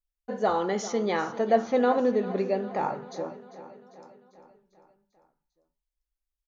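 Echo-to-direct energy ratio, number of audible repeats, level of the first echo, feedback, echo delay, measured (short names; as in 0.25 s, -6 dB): -13.5 dB, 5, -15.5 dB, 58%, 0.397 s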